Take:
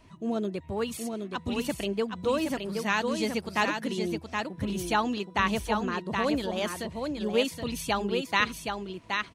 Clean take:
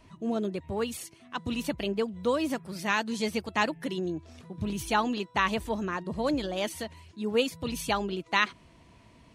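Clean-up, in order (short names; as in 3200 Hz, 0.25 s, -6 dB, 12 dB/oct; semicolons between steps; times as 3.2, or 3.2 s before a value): inverse comb 0.772 s -5 dB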